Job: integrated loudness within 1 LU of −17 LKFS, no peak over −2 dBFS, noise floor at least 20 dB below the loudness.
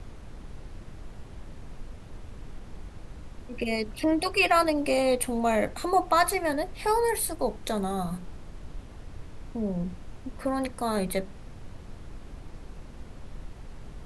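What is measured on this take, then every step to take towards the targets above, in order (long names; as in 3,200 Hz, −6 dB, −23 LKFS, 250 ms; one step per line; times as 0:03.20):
background noise floor −45 dBFS; target noise floor −47 dBFS; integrated loudness −27.0 LKFS; sample peak −10.5 dBFS; target loudness −17.0 LKFS
→ noise reduction from a noise print 6 dB
level +10 dB
brickwall limiter −2 dBFS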